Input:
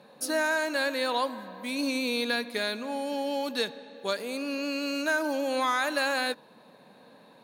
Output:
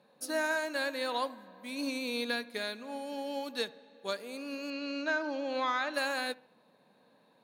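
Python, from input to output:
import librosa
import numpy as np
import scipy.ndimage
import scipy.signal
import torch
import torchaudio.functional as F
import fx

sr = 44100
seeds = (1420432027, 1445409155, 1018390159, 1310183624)

p1 = fx.lowpass(x, sr, hz=5300.0, slope=24, at=(4.7, 5.94))
p2 = p1 + fx.echo_wet_lowpass(p1, sr, ms=71, feedback_pct=43, hz=2500.0, wet_db=-17, dry=0)
p3 = fx.upward_expand(p2, sr, threshold_db=-39.0, expansion=1.5)
y = F.gain(torch.from_numpy(p3), -4.0).numpy()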